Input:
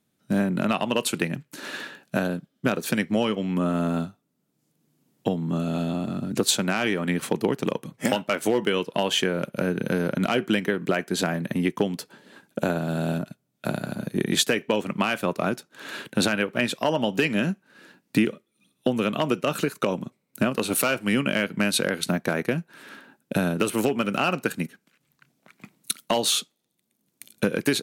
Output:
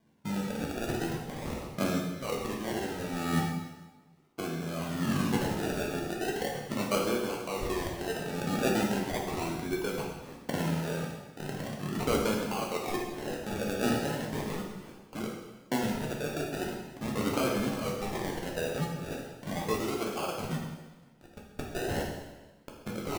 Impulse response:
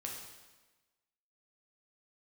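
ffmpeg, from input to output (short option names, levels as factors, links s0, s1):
-filter_complex "[0:a]areverse,acompressor=threshold=0.0316:ratio=10,areverse,aphaser=in_gain=1:out_gain=1:delay=2.9:decay=0.62:speed=0.48:type=sinusoidal,acrusher=samples=33:mix=1:aa=0.000001:lfo=1:lforange=19.8:lforate=0.32,atempo=1.2,asplit=2[s0][s1];[s1]adelay=14,volume=0.299[s2];[s0][s2]amix=inputs=2:normalize=0[s3];[1:a]atrim=start_sample=2205[s4];[s3][s4]afir=irnorm=-1:irlink=0,volume=1.12"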